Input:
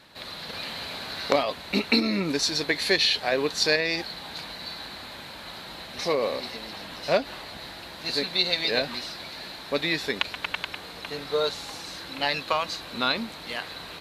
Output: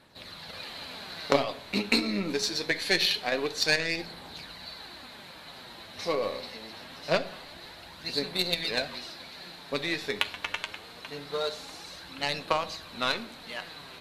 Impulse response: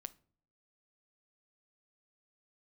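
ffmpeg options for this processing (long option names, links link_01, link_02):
-filter_complex "[0:a]aeval=exprs='0.668*(cos(1*acos(clip(val(0)/0.668,-1,1)))-cos(1*PI/2))+0.0473*(cos(7*acos(clip(val(0)/0.668,-1,1)))-cos(7*PI/2))':channel_layout=same,flanger=delay=0.1:depth=9.8:regen=48:speed=0.24:shape=sinusoidal[link_01];[1:a]atrim=start_sample=2205,asetrate=25578,aresample=44100[link_02];[link_01][link_02]afir=irnorm=-1:irlink=0,volume=6dB"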